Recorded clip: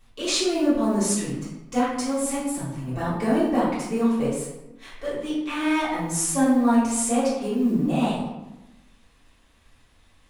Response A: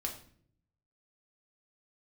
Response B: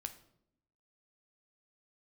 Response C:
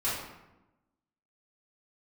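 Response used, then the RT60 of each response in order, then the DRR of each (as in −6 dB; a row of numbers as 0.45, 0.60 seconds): C; non-exponential decay, 0.75 s, 1.0 s; 0.0, 7.5, −11.5 decibels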